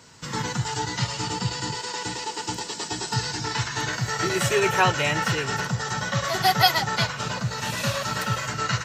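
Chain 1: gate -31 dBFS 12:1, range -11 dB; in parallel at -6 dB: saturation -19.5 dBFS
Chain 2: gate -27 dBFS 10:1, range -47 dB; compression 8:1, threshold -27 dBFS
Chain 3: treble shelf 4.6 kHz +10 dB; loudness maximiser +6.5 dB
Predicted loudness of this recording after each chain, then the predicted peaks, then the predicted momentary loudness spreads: -22.5 LUFS, -32.0 LUFS, -16.5 LUFS; -4.0 dBFS, -15.0 dBFS, -1.0 dBFS; 10 LU, 9 LU, 7 LU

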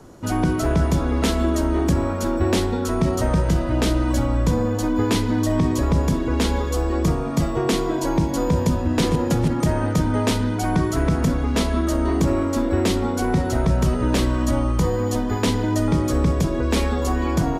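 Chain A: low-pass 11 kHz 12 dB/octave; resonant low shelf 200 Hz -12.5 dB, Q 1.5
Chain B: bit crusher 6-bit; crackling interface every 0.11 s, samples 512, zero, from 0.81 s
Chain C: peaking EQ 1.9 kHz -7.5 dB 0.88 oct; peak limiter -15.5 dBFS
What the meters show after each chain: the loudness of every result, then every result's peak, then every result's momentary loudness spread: -22.0 LUFS, -21.5 LUFS, -24.5 LUFS; -8.0 dBFS, -10.0 dBFS, -15.5 dBFS; 3 LU, 2 LU, 1 LU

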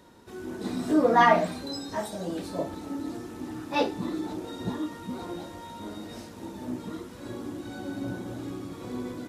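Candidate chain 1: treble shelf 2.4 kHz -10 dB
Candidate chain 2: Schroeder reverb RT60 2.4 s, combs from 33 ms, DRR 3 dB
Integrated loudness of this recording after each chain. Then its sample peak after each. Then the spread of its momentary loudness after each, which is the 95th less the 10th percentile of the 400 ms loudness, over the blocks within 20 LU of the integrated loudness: -31.0 LUFS, -28.5 LUFS; -8.5 dBFS, -5.0 dBFS; 17 LU, 17 LU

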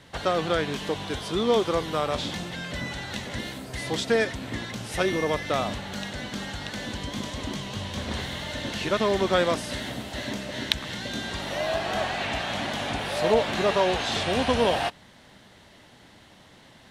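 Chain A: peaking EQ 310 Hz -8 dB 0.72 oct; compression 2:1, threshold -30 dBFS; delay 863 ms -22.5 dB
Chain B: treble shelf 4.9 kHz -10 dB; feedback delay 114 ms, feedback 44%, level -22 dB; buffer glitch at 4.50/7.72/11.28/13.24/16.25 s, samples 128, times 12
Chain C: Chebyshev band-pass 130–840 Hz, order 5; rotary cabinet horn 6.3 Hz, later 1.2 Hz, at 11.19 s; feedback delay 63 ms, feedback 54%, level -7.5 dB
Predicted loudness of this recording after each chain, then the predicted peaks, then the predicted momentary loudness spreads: -32.0 LUFS, -28.0 LUFS, -31.5 LUFS; -9.0 dBFS, -6.5 dBFS, -12.0 dBFS; 6 LU, 11 LU, 14 LU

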